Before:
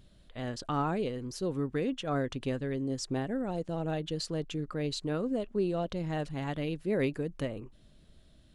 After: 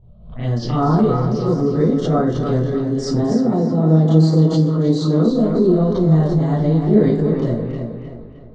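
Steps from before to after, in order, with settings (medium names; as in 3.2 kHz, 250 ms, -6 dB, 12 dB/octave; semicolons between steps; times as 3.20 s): backward echo that repeats 143 ms, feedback 45%, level -11 dB; level-controlled noise filter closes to 980 Hz, open at -30.5 dBFS; bass shelf 440 Hz +7.5 dB; touch-sensitive phaser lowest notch 250 Hz, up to 2.6 kHz, full sweep at -27 dBFS; 3.18–5.25 s: cabinet simulation 120–9000 Hz, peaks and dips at 310 Hz +5 dB, 1.6 kHz -5 dB, 5.2 kHz -4 dB; tape echo 310 ms, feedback 44%, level -5 dB, low-pass 5.7 kHz; reverberation RT60 0.35 s, pre-delay 25 ms, DRR -10.5 dB; swell ahead of each attack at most 88 dB/s; trim -1.5 dB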